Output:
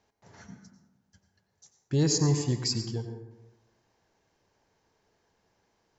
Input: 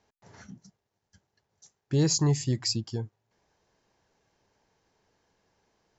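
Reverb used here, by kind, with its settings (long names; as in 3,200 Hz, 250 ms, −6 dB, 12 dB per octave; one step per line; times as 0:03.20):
dense smooth reverb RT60 1.1 s, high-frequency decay 0.4×, pre-delay 80 ms, DRR 6.5 dB
level −1 dB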